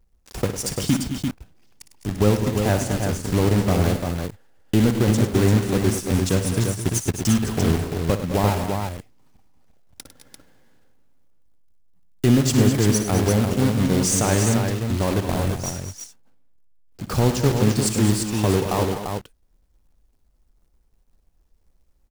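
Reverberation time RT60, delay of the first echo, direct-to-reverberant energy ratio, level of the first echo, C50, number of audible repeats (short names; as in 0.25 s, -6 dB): none, 58 ms, none, -12.0 dB, none, 4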